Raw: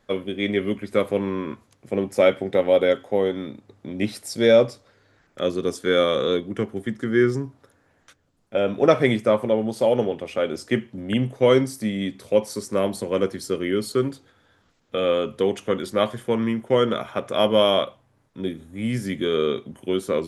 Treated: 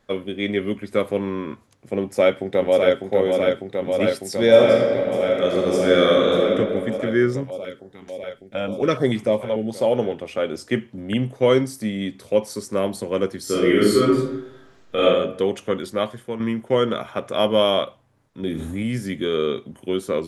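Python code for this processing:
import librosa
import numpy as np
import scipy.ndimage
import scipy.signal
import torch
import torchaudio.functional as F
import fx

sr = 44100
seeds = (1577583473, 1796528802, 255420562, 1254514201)

y = fx.echo_throw(x, sr, start_s=2.01, length_s=1.0, ms=600, feedback_pct=85, wet_db=-4.0)
y = fx.reverb_throw(y, sr, start_s=4.48, length_s=2.06, rt60_s=2.0, drr_db=-1.5)
y = fx.filter_held_notch(y, sr, hz=6.8, low_hz=300.0, high_hz=2400.0, at=(7.43, 9.72), fade=0.02)
y = fx.reverb_throw(y, sr, start_s=13.43, length_s=1.61, rt60_s=0.81, drr_db=-8.0)
y = fx.env_flatten(y, sr, amount_pct=70, at=(18.43, 18.83))
y = fx.edit(y, sr, fx.fade_out_to(start_s=15.78, length_s=0.62, floor_db=-8.0), tone=tone)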